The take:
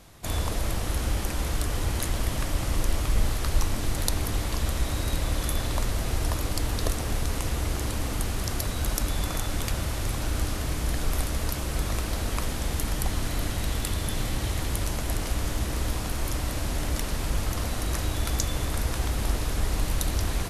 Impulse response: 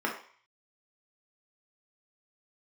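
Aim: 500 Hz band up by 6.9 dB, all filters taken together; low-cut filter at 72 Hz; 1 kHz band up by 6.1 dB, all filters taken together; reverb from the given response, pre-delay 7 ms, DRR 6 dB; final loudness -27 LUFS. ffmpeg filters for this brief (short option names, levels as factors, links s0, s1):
-filter_complex "[0:a]highpass=72,equalizer=f=500:t=o:g=7,equalizer=f=1000:t=o:g=5.5,asplit=2[s0][s1];[1:a]atrim=start_sample=2205,adelay=7[s2];[s1][s2]afir=irnorm=-1:irlink=0,volume=0.178[s3];[s0][s3]amix=inputs=2:normalize=0,volume=1.19"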